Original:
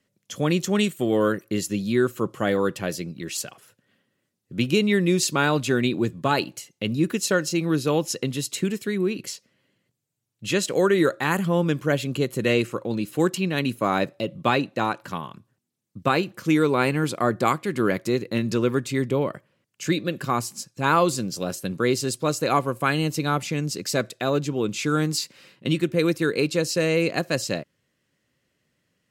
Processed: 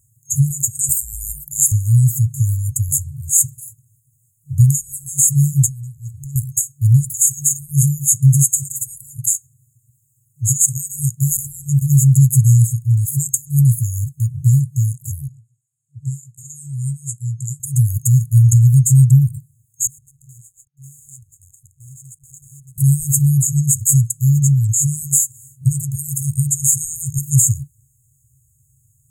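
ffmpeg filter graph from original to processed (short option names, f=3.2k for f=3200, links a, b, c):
-filter_complex "[0:a]asettb=1/sr,asplit=3[a][b][c];[a]atrim=end=0.894[d];[b]atrim=start=0.89:end=1.72,asetpts=PTS-STARTPTS,afade=t=in:d=0.004:c=qsin,afade=t=out:st=0.826:d=0.004:c=qsin,acontrast=50,afreqshift=52,equalizer=f=290:t=o:w=1.8:g=-11.5[e];[c]atrim=start=1.716[f];[d][e]acrossfade=d=0.004:c1=hsin:c2=qsin[g];[g][f]acrossfade=d=0.004:c1=qsin:c2=hsin,asettb=1/sr,asplit=3[h][i][j];[h]atrim=end=5.664[k];[i]atrim=start=5.66:end=6.36,asetpts=PTS-STARTPTS,afade=t=in:d=0.004:c=qsin,afade=t=out:st=0.696:d=0.004:c=qsin,highpass=140,acompressor=threshold=-37dB:ratio=5:attack=3.2:release=140:knee=1:detection=peak[l];[j]atrim=start=6.356[m];[k][l]acrossfade=d=0.004:c1=hsin:c2=qsin[n];[n][m]acrossfade=d=0.004:c1=qsin:c2=hsin,asettb=1/sr,asplit=3[o][p][q];[o]atrim=end=15.284[r];[p]atrim=start=15.28:end=17.6,asetpts=PTS-STARTPTS,afade=t=in:d=0.004:c=qsin,afade=t=out:st=2.316:d=0.004:c=qsin,highpass=270,lowpass=4.6k,asplit=2[s][t];[t]adelay=17,volume=-7dB[u];[s][u]amix=inputs=2:normalize=0,atrim=end_sample=102312[v];[q]atrim=start=17.596[w];[r][v]acrossfade=d=0.004:c1=hsin:c2=qsin[x];[x][w]acrossfade=d=0.004:c1=qsin:c2=hsin,asettb=1/sr,asplit=3[y][z][aa];[y]atrim=end=19.874[ab];[z]atrim=start=19.87:end=22.78,asetpts=PTS-STARTPTS,afade=t=in:d=0.004:c=qsin,afade=t=out:st=2.906:d=0.004:c=qsin,bandreject=f=50:t=h:w=6,bandreject=f=100:t=h:w=6,bandreject=f=150:t=h:w=6,bandreject=f=200:t=h:w=6,bandreject=f=250:t=h:w=6,acrusher=bits=5:dc=4:mix=0:aa=0.000001,asplit=3[ac][ad][ae];[ac]bandpass=f=530:t=q:w=8,volume=0dB[af];[ad]bandpass=f=1.84k:t=q:w=8,volume=-6dB[ag];[ae]bandpass=f=2.48k:t=q:w=8,volume=-9dB[ah];[af][ag][ah]amix=inputs=3:normalize=0[ai];[aa]atrim=start=22.776[aj];[ab][ai]acrossfade=d=0.004:c1=hsin:c2=qsin[ak];[ak][aj]acrossfade=d=0.004:c1=qsin:c2=hsin,afftfilt=real='re*(1-between(b*sr/4096,140,6500))':imag='im*(1-between(b*sr/4096,140,6500))':win_size=4096:overlap=0.75,alimiter=level_in=23dB:limit=-1dB:release=50:level=0:latency=1,volume=-1dB"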